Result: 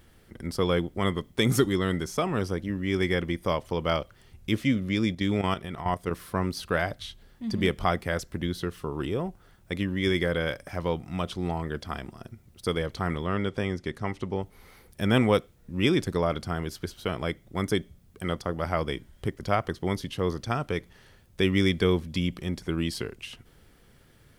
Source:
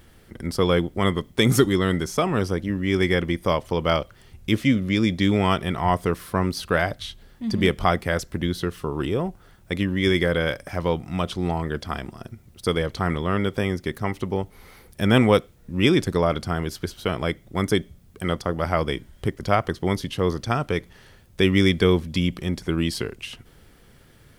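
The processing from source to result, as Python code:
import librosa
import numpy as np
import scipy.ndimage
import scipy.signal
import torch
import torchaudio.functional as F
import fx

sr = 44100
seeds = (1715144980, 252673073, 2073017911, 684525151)

y = fx.level_steps(x, sr, step_db=10, at=(5.12, 6.11))
y = fx.lowpass(y, sr, hz=8100.0, slope=12, at=(13.26, 14.42))
y = F.gain(torch.from_numpy(y), -5.0).numpy()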